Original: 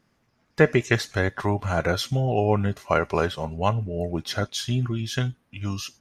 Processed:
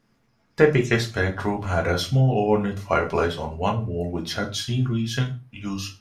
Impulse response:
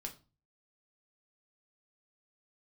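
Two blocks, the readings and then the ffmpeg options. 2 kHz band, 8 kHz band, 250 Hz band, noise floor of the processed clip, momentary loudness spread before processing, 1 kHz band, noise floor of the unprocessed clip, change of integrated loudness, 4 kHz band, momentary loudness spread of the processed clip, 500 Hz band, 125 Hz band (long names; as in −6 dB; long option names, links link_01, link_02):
+0.5 dB, 0.0 dB, +2.5 dB, −66 dBFS, 8 LU, +0.5 dB, −69 dBFS, +1.5 dB, +1.0 dB, 9 LU, +1.5 dB, +1.5 dB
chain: -filter_complex "[1:a]atrim=start_sample=2205,afade=type=out:start_time=0.25:duration=0.01,atrim=end_sample=11466[link_01];[0:a][link_01]afir=irnorm=-1:irlink=0,volume=3.5dB"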